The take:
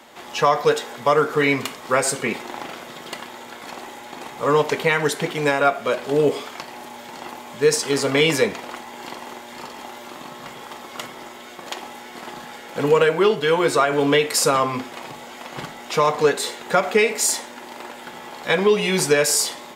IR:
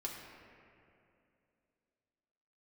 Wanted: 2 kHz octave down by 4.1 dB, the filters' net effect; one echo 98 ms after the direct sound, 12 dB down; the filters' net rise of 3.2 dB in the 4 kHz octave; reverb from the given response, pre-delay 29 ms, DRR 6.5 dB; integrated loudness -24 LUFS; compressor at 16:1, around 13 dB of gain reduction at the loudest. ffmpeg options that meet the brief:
-filter_complex "[0:a]equalizer=f=2000:t=o:g=-7,equalizer=f=4000:t=o:g=6.5,acompressor=threshold=0.0562:ratio=16,aecho=1:1:98:0.251,asplit=2[s0][s1];[1:a]atrim=start_sample=2205,adelay=29[s2];[s1][s2]afir=irnorm=-1:irlink=0,volume=0.473[s3];[s0][s3]amix=inputs=2:normalize=0,volume=2"

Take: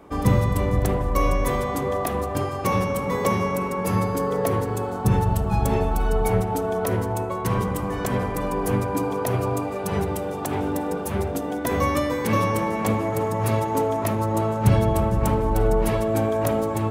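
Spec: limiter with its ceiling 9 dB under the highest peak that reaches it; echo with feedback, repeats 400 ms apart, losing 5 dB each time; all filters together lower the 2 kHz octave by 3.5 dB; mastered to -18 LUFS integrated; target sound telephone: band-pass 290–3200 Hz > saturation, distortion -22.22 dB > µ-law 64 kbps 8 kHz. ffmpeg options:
-af "equalizer=f=2000:t=o:g=-3.5,alimiter=limit=0.168:level=0:latency=1,highpass=290,lowpass=3200,aecho=1:1:400|800|1200|1600|2000|2400|2800:0.562|0.315|0.176|0.0988|0.0553|0.031|0.0173,asoftclip=threshold=0.141,volume=2.99" -ar 8000 -c:a pcm_mulaw

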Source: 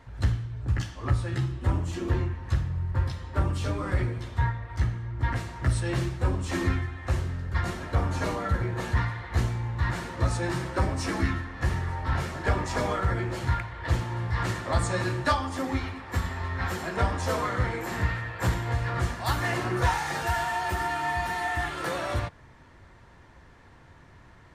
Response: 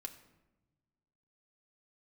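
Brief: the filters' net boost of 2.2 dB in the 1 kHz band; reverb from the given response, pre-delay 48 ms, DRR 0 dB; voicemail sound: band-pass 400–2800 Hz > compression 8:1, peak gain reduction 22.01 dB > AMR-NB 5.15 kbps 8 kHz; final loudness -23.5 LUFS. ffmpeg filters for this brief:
-filter_complex "[0:a]equalizer=f=1000:t=o:g=3,asplit=2[s0][s1];[1:a]atrim=start_sample=2205,adelay=48[s2];[s1][s2]afir=irnorm=-1:irlink=0,volume=1.5[s3];[s0][s3]amix=inputs=2:normalize=0,highpass=400,lowpass=2800,acompressor=threshold=0.01:ratio=8,volume=14.1" -ar 8000 -c:a libopencore_amrnb -b:a 5150

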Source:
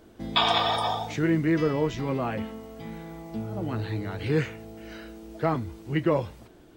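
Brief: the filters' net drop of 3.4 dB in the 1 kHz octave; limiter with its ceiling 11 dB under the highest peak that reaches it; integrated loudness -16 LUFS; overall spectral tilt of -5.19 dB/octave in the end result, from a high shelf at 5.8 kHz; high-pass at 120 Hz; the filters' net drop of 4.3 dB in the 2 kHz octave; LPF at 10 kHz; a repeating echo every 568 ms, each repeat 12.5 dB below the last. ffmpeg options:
-af "highpass=120,lowpass=10000,equalizer=f=1000:t=o:g=-3.5,equalizer=f=2000:t=o:g=-3.5,highshelf=f=5800:g=-7,alimiter=limit=0.075:level=0:latency=1,aecho=1:1:568|1136|1704:0.237|0.0569|0.0137,volume=7.5"

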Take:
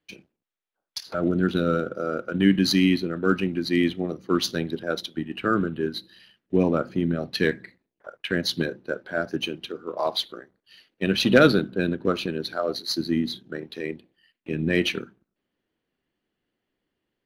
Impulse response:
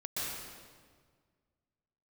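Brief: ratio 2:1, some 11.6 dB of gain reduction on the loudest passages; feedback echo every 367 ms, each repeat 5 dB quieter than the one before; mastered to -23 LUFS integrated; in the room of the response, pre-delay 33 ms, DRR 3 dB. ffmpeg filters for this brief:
-filter_complex "[0:a]acompressor=threshold=0.0251:ratio=2,aecho=1:1:367|734|1101|1468|1835|2202|2569:0.562|0.315|0.176|0.0988|0.0553|0.031|0.0173,asplit=2[s0][s1];[1:a]atrim=start_sample=2205,adelay=33[s2];[s1][s2]afir=irnorm=-1:irlink=0,volume=0.447[s3];[s0][s3]amix=inputs=2:normalize=0,volume=2.11"

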